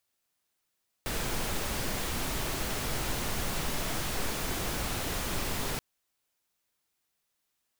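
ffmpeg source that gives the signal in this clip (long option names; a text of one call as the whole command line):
ffmpeg -f lavfi -i "anoisesrc=color=pink:amplitude=0.129:duration=4.73:sample_rate=44100:seed=1" out.wav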